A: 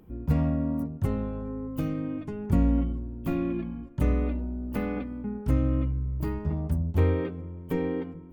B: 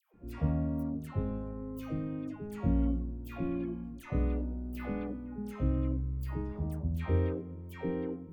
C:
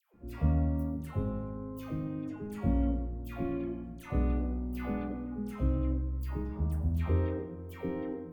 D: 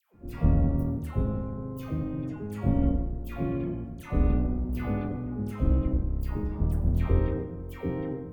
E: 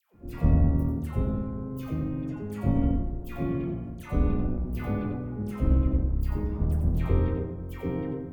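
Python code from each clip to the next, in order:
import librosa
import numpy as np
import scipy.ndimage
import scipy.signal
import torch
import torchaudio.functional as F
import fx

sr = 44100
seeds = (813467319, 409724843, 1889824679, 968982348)

y1 = fx.dispersion(x, sr, late='lows', ms=141.0, hz=940.0)
y1 = F.gain(torch.from_numpy(y1), -6.0).numpy()
y2 = fx.rev_fdn(y1, sr, rt60_s=1.3, lf_ratio=0.8, hf_ratio=0.55, size_ms=80.0, drr_db=4.0)
y3 = fx.octave_divider(y2, sr, octaves=1, level_db=-1.0)
y3 = F.gain(torch.from_numpy(y3), 3.0).numpy()
y4 = y3 + 10.0 ** (-7.5 / 20.0) * np.pad(y3, (int(91 * sr / 1000.0), 0))[:len(y3)]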